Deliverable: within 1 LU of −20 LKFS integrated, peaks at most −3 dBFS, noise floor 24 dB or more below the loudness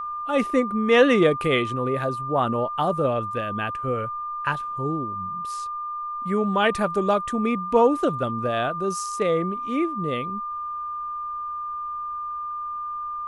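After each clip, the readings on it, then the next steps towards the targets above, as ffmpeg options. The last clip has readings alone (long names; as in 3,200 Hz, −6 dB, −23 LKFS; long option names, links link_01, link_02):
interfering tone 1,200 Hz; level of the tone −28 dBFS; integrated loudness −24.5 LKFS; sample peak −5.5 dBFS; target loudness −20.0 LKFS
→ -af "bandreject=frequency=1200:width=30"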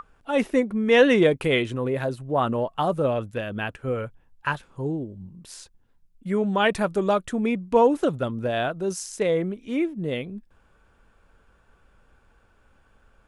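interfering tone none found; integrated loudness −24.0 LKFS; sample peak −6.0 dBFS; target loudness −20.0 LKFS
→ -af "volume=4dB,alimiter=limit=-3dB:level=0:latency=1"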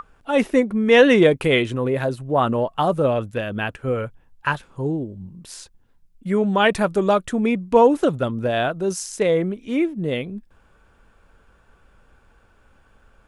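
integrated loudness −20.0 LKFS; sample peak −3.0 dBFS; background noise floor −57 dBFS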